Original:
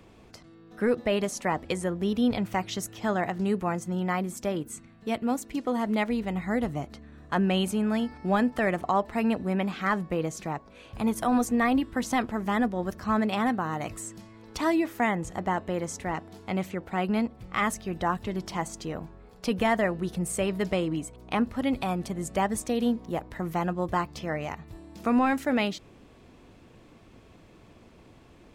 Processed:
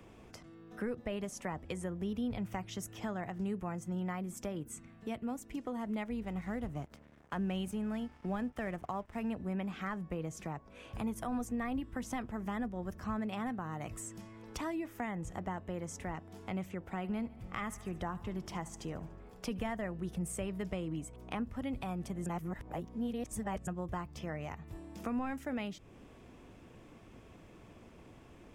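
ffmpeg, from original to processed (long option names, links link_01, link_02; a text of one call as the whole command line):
ffmpeg -i in.wav -filter_complex "[0:a]asettb=1/sr,asplit=3[link_01][link_02][link_03];[link_01]atrim=end=6.234[link_04];[link_02]atrim=start=6.23:end=9.31,asetpts=PTS-STARTPTS,afade=type=in:duration=0.004:curve=qsin,afade=type=out:start_time=3.076:duration=0.004:curve=qsin,aeval=exprs='sgn(val(0))*max(abs(val(0))-0.00447,0)':channel_layout=same[link_05];[link_03]atrim=start=9.306[link_06];[link_04][link_05]acrossfade=duration=0.004:curve1=hsin:curve2=qsin[link_07];[link_07][link_06]acrossfade=duration=0.004:curve1=qsin:curve2=hsin,asettb=1/sr,asplit=3[link_08][link_09][link_10];[link_08]atrim=end=16.814[link_11];[link_09]atrim=start=16.81:end=19.72,asetpts=PTS-STARTPTS,afade=type=in:duration=0.004:curve=qsin,afade=type=out:start_time=2.906:duration=0.004:curve=qsin,aecho=1:1:73|146|219|292|365:0.112|0.0617|0.0339|0.0187|0.0103,atrim=end_sample=128331[link_12];[link_10]atrim=start=19.716[link_13];[link_11][link_12]acrossfade=duration=0.004:curve1=hsin:curve2=qsin[link_14];[link_14][link_13]acrossfade=duration=0.004:curve1=qsin:curve2=hsin,asplit=3[link_15][link_16][link_17];[link_15]atrim=end=22.262[link_18];[link_16]atrim=start=22.258:end=23.672,asetpts=PTS-STARTPTS,areverse[link_19];[link_17]atrim=start=23.668[link_20];[link_18][link_19]acrossfade=duration=0.004:curve1=hsin:curve2=hsin[link_21];[link_21][link_20]acrossfade=duration=0.004:curve1=hsin:curve2=hsin,acrossover=split=140[link_22][link_23];[link_23]acompressor=threshold=-40dB:ratio=2.5[link_24];[link_22][link_24]amix=inputs=2:normalize=0,equalizer=frequency=4200:width=4.2:gain=-8,volume=-2dB" out.wav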